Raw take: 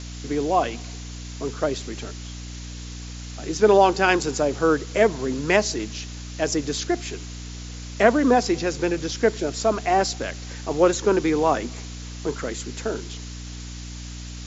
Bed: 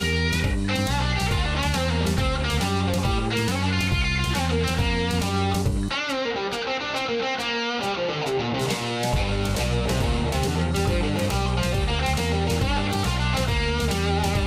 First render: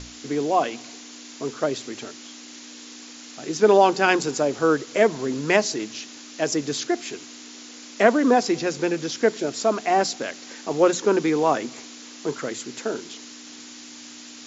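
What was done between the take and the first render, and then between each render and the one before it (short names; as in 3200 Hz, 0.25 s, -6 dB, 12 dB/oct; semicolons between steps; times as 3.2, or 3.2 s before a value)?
notches 60/120/180 Hz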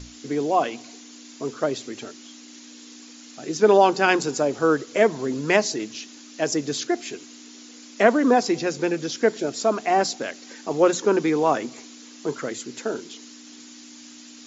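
denoiser 6 dB, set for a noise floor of -42 dBFS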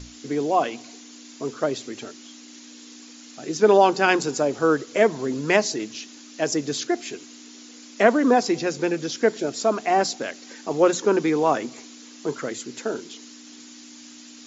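nothing audible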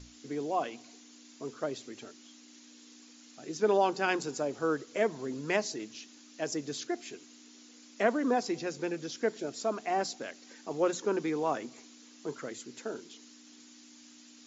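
gain -10.5 dB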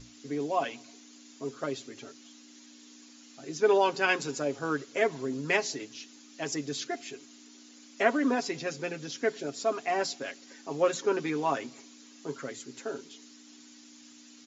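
dynamic EQ 2500 Hz, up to +5 dB, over -46 dBFS, Q 0.84; comb 7.3 ms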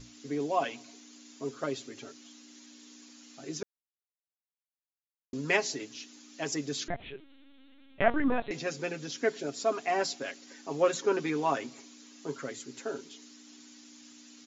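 3.63–5.33 mute; 6.88–8.51 LPC vocoder at 8 kHz pitch kept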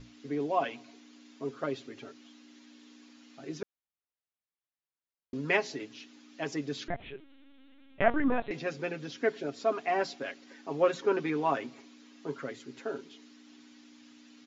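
LPF 3400 Hz 12 dB/oct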